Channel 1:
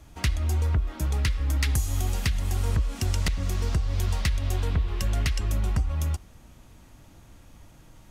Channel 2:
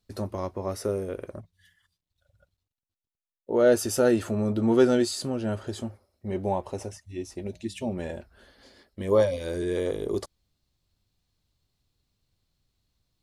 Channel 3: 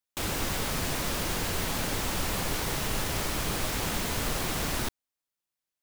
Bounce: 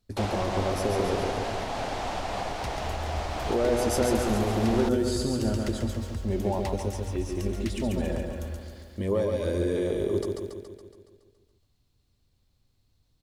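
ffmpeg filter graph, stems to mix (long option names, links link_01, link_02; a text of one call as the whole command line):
ffmpeg -i stem1.wav -i stem2.wav -i stem3.wav -filter_complex "[0:a]acrusher=bits=8:mix=0:aa=0.000001,adelay=2400,volume=-11dB,asplit=2[link_01][link_02];[link_02]volume=-8dB[link_03];[1:a]lowshelf=frequency=440:gain=6,acompressor=threshold=-24dB:ratio=4,volume=-0.5dB,asplit=2[link_04][link_05];[link_05]volume=-4dB[link_06];[2:a]lowpass=5200,equalizer=frequency=720:width_type=o:width=0.71:gain=14.5,volume=-3dB[link_07];[link_01][link_07]amix=inputs=2:normalize=0,alimiter=limit=-21dB:level=0:latency=1:release=280,volume=0dB[link_08];[link_03][link_06]amix=inputs=2:normalize=0,aecho=0:1:140|280|420|560|700|840|980|1120|1260|1400:1|0.6|0.36|0.216|0.13|0.0778|0.0467|0.028|0.0168|0.0101[link_09];[link_04][link_08][link_09]amix=inputs=3:normalize=0,equalizer=frequency=160:width_type=o:width=0.26:gain=-6" out.wav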